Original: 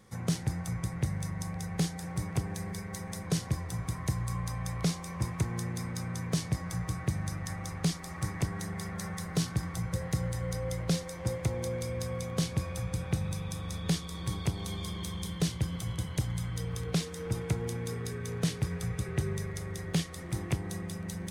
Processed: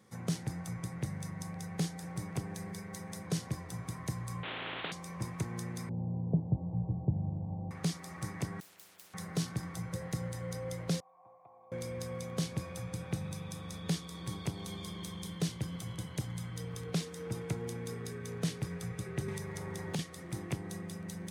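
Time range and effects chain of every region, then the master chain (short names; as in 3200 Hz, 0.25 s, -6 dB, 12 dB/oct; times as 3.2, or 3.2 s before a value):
4.43–4.92 CVSD 16 kbps + spectral compressor 10:1
5.89–7.71 steep low-pass 910 Hz 72 dB/oct + low shelf 150 Hz +11.5 dB
8.6–9.14 high shelf 11000 Hz +6.5 dB + hard clip -32.5 dBFS + spectral compressor 10:1
11–11.72 vocal tract filter a + tilt +2.5 dB/oct
19.28–19.99 bell 900 Hz +9 dB 0.28 oct + three-band squash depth 100%
whole clip: HPF 140 Hz 12 dB/oct; low shelf 370 Hz +3 dB; gain -4.5 dB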